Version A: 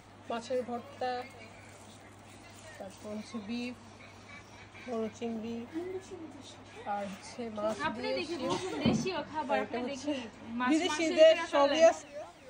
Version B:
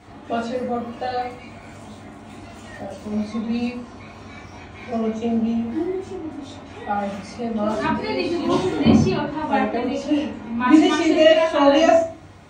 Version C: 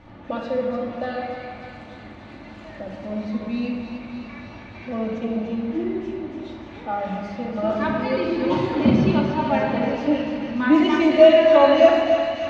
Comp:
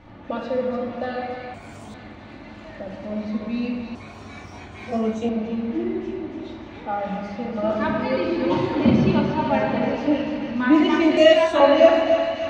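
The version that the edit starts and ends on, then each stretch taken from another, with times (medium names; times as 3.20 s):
C
1.54–1.94 s: from B
3.95–5.29 s: from B
11.17–11.60 s: from B
not used: A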